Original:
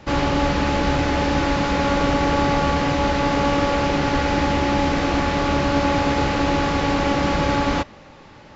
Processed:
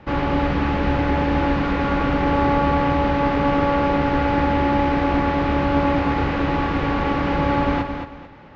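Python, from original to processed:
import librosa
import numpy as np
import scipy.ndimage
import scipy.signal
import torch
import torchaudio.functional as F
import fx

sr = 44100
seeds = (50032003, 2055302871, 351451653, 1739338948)

p1 = scipy.signal.sosfilt(scipy.signal.butter(2, 2500.0, 'lowpass', fs=sr, output='sos'), x)
p2 = fx.peak_eq(p1, sr, hz=620.0, db=-3.0, octaves=0.21)
p3 = p2 + fx.echo_feedback(p2, sr, ms=222, feedback_pct=28, wet_db=-7, dry=0)
y = p3 * 10.0 ** (-1.0 / 20.0)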